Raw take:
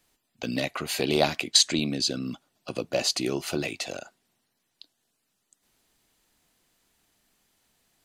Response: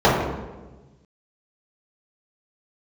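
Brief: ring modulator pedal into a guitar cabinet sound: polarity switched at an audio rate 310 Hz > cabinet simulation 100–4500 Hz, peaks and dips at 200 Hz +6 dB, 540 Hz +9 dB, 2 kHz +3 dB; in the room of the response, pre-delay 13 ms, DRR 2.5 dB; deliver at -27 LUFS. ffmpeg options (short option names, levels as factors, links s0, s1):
-filter_complex "[0:a]asplit=2[s0][s1];[1:a]atrim=start_sample=2205,adelay=13[s2];[s1][s2]afir=irnorm=-1:irlink=0,volume=0.0376[s3];[s0][s3]amix=inputs=2:normalize=0,aeval=exprs='val(0)*sgn(sin(2*PI*310*n/s))':c=same,highpass=100,equalizer=f=200:t=q:w=4:g=6,equalizer=f=540:t=q:w=4:g=9,equalizer=f=2000:t=q:w=4:g=3,lowpass=f=4500:w=0.5412,lowpass=f=4500:w=1.3066,volume=0.708"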